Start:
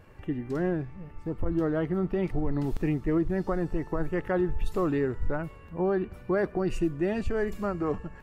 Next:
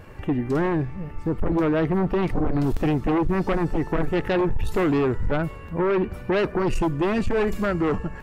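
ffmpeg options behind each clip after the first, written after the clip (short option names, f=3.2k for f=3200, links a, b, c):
-af "aeval=exprs='0.133*sin(PI/2*2*val(0)/0.133)':c=same"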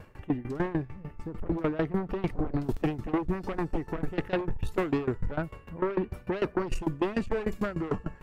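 -af "aeval=exprs='val(0)*pow(10,-19*if(lt(mod(6.7*n/s,1),2*abs(6.7)/1000),1-mod(6.7*n/s,1)/(2*abs(6.7)/1000),(mod(6.7*n/s,1)-2*abs(6.7)/1000)/(1-2*abs(6.7)/1000))/20)':c=same,volume=-1.5dB"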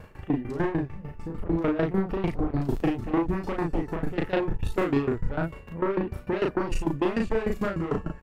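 -filter_complex "[0:a]asplit=2[a][b];[b]adelay=36,volume=-3dB[c];[a][c]amix=inputs=2:normalize=0,volume=1.5dB"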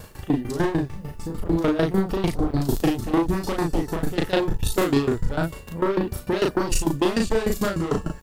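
-af "aexciter=amount=2:drive=9.9:freq=3.4k,volume=4dB"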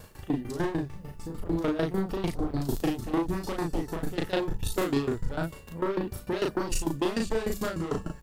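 -af "bandreject=f=50:t=h:w=6,bandreject=f=100:t=h:w=6,bandreject=f=150:t=h:w=6,bandreject=f=200:t=h:w=6,volume=-6.5dB"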